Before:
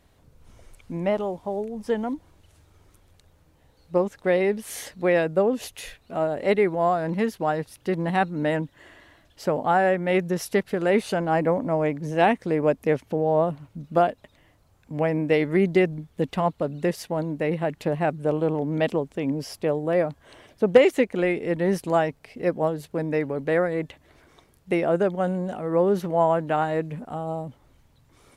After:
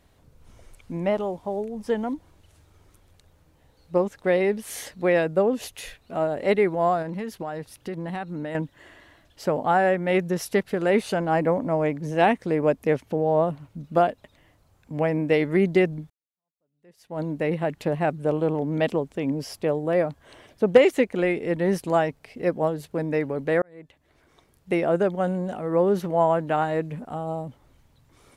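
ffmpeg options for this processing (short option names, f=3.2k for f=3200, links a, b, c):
-filter_complex "[0:a]asettb=1/sr,asplit=3[a][b][c];[a]atrim=end=7.024[d];[b]atrim=start=7.02:end=8.55,asetpts=PTS-STARTPTS,afade=t=in:d=0.004:c=qsin,afade=t=out:st=1.526:d=0.004:c=qsin,acompressor=threshold=-28dB:ratio=6:attack=3.2:release=140:knee=1:detection=peak[e];[c]atrim=start=8.546[f];[d][e]acrossfade=d=0.004:c1=hsin:c2=qsin[g];[g][f]acrossfade=d=0.004:c1=qsin:c2=hsin,asplit=3[h][i][j];[h]atrim=end=16.1,asetpts=PTS-STARTPTS,afade=t=out:st=16.096:d=0.004:c=hsin[k];[i]atrim=start=16.1:end=23.62,asetpts=PTS-STARTPTS,afade=t=in:d=1.12:c=exp,afade=t=out:st=7.516:d=0.004:c=hsin[l];[j]atrim=start=23.62,asetpts=PTS-STARTPTS,afade=t=in:d=1.16[m];[k][l][m]concat=n=3:v=0:a=1"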